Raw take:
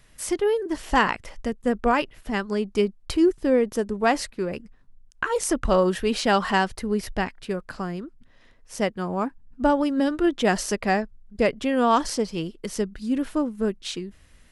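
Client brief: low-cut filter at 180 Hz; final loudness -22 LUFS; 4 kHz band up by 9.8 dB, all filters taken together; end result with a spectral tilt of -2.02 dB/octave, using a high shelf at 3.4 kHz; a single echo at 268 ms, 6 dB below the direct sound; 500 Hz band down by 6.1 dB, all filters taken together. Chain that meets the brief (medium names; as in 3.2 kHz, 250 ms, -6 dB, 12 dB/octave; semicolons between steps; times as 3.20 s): high-pass 180 Hz; peaking EQ 500 Hz -8 dB; treble shelf 3.4 kHz +8 dB; peaking EQ 4 kHz +7.5 dB; delay 268 ms -6 dB; trim +2 dB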